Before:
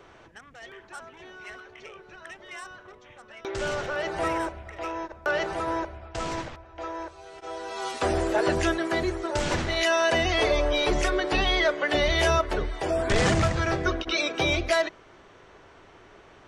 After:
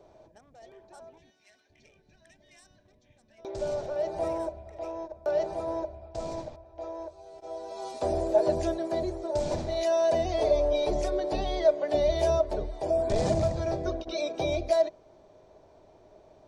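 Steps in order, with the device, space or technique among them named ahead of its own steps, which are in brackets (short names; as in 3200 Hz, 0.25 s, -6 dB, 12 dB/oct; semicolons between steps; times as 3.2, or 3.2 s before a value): 1.19–3.39 spectral gain 320–1500 Hz -14 dB; inside a helmet (high shelf 4700 Hz -6 dB; small resonant body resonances 620/2400 Hz, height 13 dB, ringing for 65 ms); 1.3–1.7 HPF 790 Hz 6 dB/oct; band shelf 1900 Hz -13.5 dB; gain -5 dB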